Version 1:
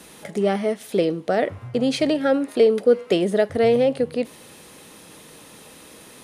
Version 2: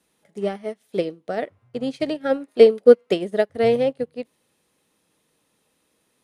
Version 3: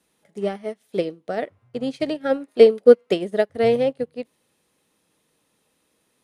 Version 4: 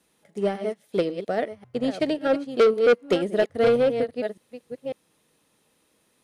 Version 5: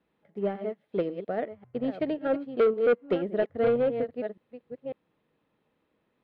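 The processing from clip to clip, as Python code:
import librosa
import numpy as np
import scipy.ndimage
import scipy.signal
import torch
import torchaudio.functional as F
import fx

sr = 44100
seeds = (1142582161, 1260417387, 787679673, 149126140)

y1 = fx.upward_expand(x, sr, threshold_db=-31.0, expansion=2.5)
y1 = y1 * librosa.db_to_amplitude(6.0)
y2 = y1
y3 = fx.reverse_delay(y2, sr, ms=547, wet_db=-11.0)
y3 = 10.0 ** (-14.5 / 20.0) * np.tanh(y3 / 10.0 ** (-14.5 / 20.0))
y3 = y3 * librosa.db_to_amplitude(1.5)
y4 = fx.air_absorb(y3, sr, metres=460.0)
y4 = y4 * librosa.db_to_amplitude(-3.5)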